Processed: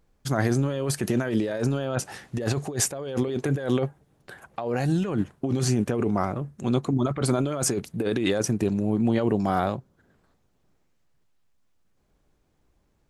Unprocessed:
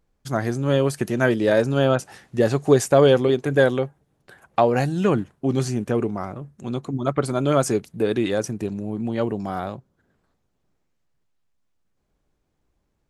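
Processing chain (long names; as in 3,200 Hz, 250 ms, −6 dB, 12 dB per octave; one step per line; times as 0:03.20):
compressor whose output falls as the input rises −25 dBFS, ratio −1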